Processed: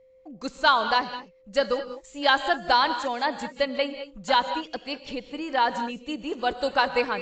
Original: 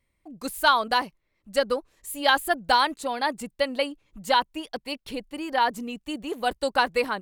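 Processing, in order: whine 520 Hz -54 dBFS; non-linear reverb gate 0.23 s rising, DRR 10 dB; AAC 48 kbps 16000 Hz

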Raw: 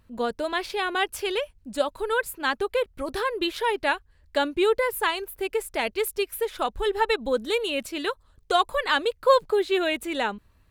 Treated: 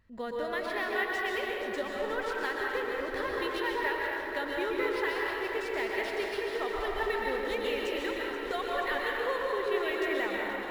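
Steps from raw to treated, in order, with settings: bell 1900 Hz +14 dB 0.23 oct; compressor 2.5:1, threshold -26 dBFS, peak gain reduction 9.5 dB; on a send: echo with dull and thin repeats by turns 0.239 s, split 1900 Hz, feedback 90%, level -10 dB; on the sum: plate-style reverb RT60 2.3 s, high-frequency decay 0.5×, pre-delay 0.11 s, DRR -2.5 dB; decimation joined by straight lines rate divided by 3×; gain -8 dB

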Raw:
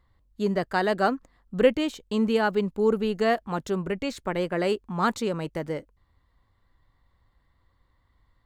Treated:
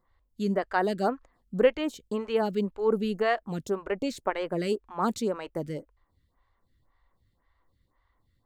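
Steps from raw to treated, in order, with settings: 3.83–4.3 dynamic EQ 650 Hz, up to +5 dB, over -41 dBFS, Q 0.83; photocell phaser 1.9 Hz

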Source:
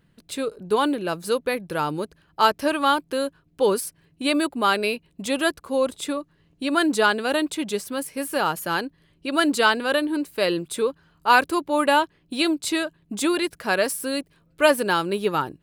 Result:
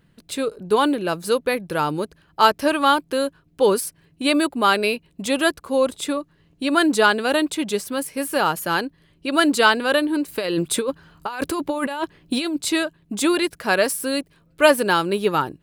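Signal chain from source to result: 10.28–12.62 negative-ratio compressor -27 dBFS, ratio -1; gain +3 dB

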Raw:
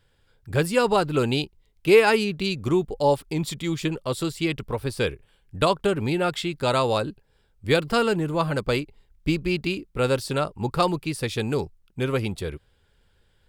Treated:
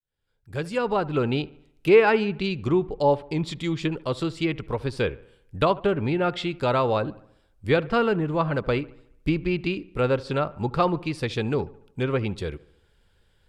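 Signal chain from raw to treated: opening faded in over 1.39 s; treble ducked by the level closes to 2500 Hz, closed at -20 dBFS; dark delay 73 ms, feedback 50%, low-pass 2200 Hz, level -20 dB

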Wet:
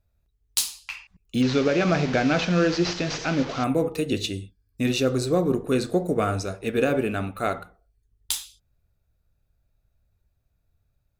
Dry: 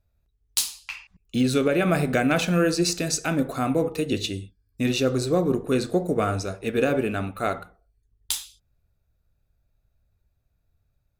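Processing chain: 1.42–3.64 delta modulation 32 kbps, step -27.5 dBFS

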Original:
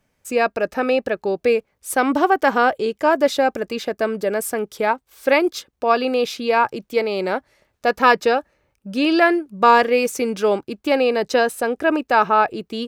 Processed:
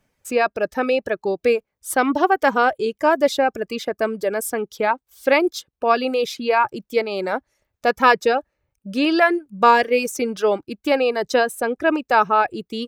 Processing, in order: reverb removal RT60 0.94 s

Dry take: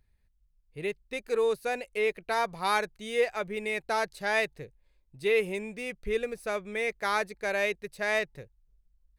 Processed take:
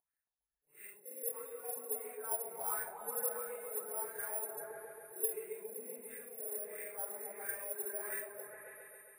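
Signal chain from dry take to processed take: phase scrambler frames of 0.2 s; compressor 2.5:1, threshold -33 dBFS, peak gain reduction 9 dB; wah 1.5 Hz 370–1600 Hz, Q 5; careless resampling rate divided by 4×, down filtered, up zero stuff; repeats that get brighter 0.136 s, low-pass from 400 Hz, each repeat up 1 oct, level 0 dB; gain -4 dB

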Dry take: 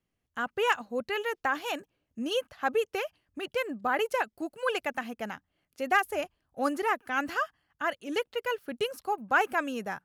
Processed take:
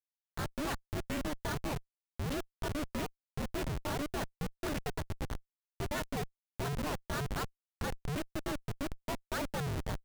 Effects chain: painted sound fall, 2.38–3.8, 750–1500 Hz -39 dBFS; ring modulator 150 Hz; Schmitt trigger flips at -33 dBFS

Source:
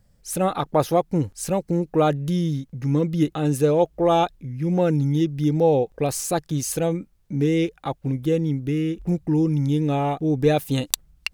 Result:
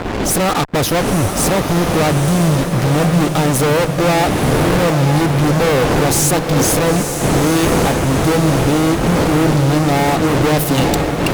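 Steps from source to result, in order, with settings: wind noise 440 Hz -31 dBFS; fuzz box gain 41 dB, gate -38 dBFS; diffused feedback echo 0.926 s, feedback 57%, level -6.5 dB

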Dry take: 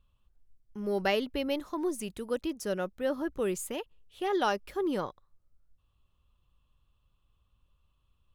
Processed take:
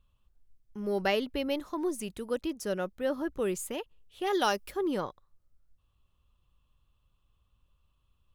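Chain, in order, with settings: 4.26–4.7 high shelf 3400 Hz -> 5900 Hz +11.5 dB

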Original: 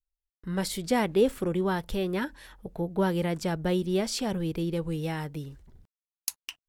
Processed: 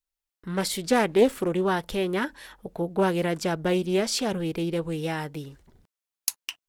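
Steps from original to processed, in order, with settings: low shelf 150 Hz -12 dB; Doppler distortion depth 0.18 ms; gain +5 dB

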